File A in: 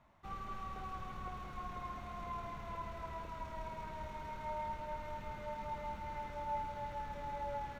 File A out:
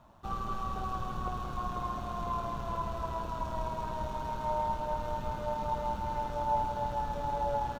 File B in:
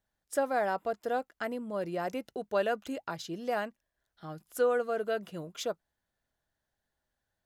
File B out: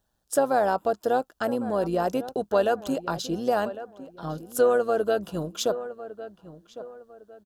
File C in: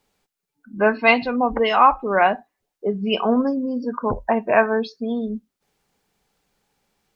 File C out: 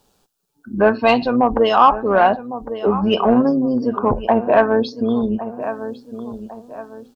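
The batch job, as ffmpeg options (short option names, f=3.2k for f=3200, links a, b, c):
-filter_complex "[0:a]asplit=2[a][b];[b]adelay=1105,lowpass=f=2k:p=1,volume=-15.5dB,asplit=2[c][d];[d]adelay=1105,lowpass=f=2k:p=1,volume=0.33,asplit=2[e][f];[f]adelay=1105,lowpass=f=2k:p=1,volume=0.33[g];[a][c][e][g]amix=inputs=4:normalize=0,tremolo=f=120:d=0.4,asplit=2[h][i];[i]acompressor=threshold=-32dB:ratio=6,volume=0dB[j];[h][j]amix=inputs=2:normalize=0,equalizer=f=2.1k:t=o:w=0.48:g=-15,acontrast=37"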